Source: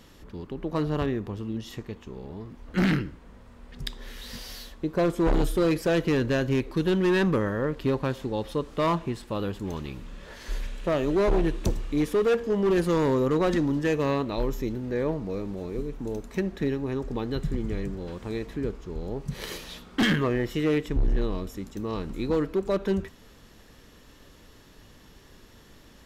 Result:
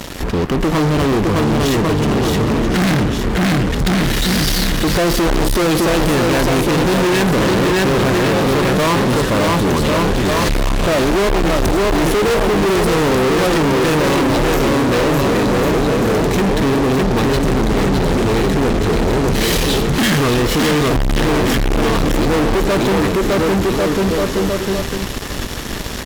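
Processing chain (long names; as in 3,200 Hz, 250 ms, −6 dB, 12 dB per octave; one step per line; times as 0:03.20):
in parallel at +2 dB: downward compressor, threshold −38 dBFS, peak gain reduction 16 dB
on the sum: bouncing-ball delay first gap 610 ms, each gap 0.8×, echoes 5
fuzz pedal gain 37 dB, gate −45 dBFS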